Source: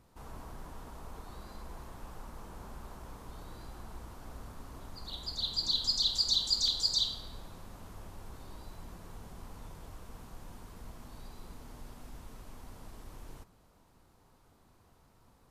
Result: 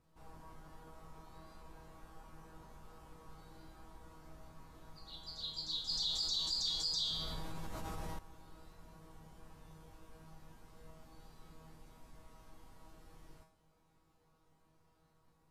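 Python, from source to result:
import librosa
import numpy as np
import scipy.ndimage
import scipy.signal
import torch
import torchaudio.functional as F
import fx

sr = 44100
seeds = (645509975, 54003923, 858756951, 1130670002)

y = fx.high_shelf(x, sr, hz=6600.0, db=-4.5)
y = fx.comb_fb(y, sr, f0_hz=160.0, decay_s=0.46, harmonics='all', damping=0.0, mix_pct=90)
y = fx.env_flatten(y, sr, amount_pct=70, at=(5.89, 8.19))
y = F.gain(torch.from_numpy(y), 4.5).numpy()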